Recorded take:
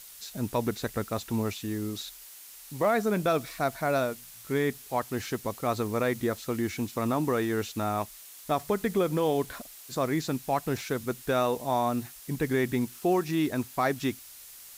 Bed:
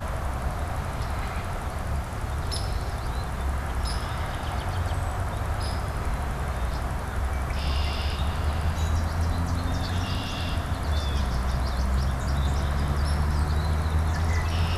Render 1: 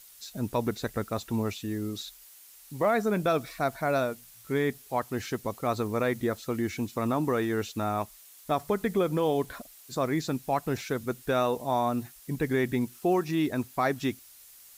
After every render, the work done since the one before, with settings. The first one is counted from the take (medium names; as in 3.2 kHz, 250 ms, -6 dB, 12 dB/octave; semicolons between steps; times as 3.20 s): noise reduction 6 dB, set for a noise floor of -48 dBFS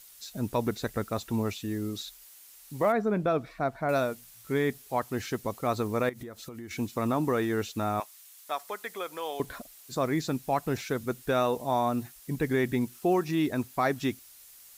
2.92–3.89 s: low-pass 1.4 kHz 6 dB/octave; 6.09–6.71 s: compression 16:1, threshold -37 dBFS; 8.00–9.40 s: Bessel high-pass 1 kHz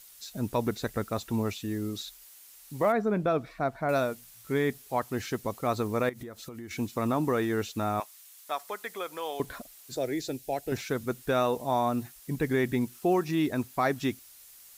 9.96–10.72 s: static phaser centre 460 Hz, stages 4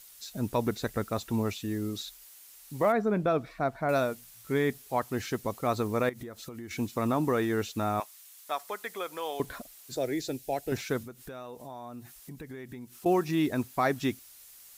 11.02–13.06 s: compression 4:1, threshold -42 dBFS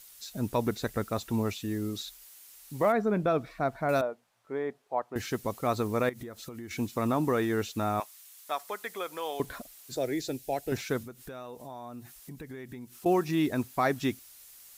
4.01–5.16 s: band-pass filter 680 Hz, Q 1.3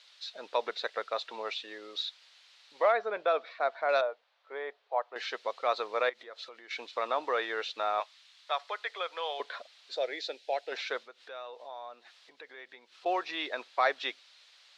elliptic band-pass 510–4000 Hz, stop band 80 dB; treble shelf 2.7 kHz +9.5 dB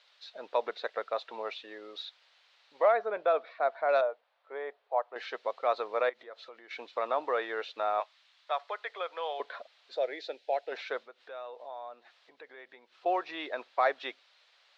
low-pass 1.9 kHz 6 dB/octave; peaking EQ 650 Hz +2.5 dB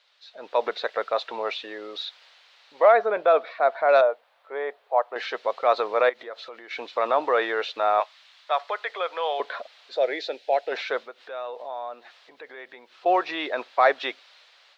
transient shaper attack -2 dB, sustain +2 dB; level rider gain up to 9 dB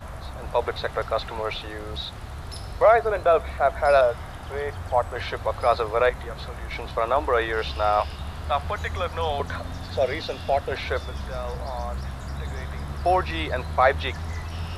add bed -7 dB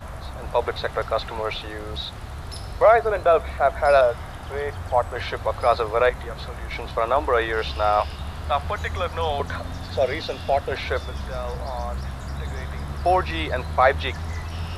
trim +1.5 dB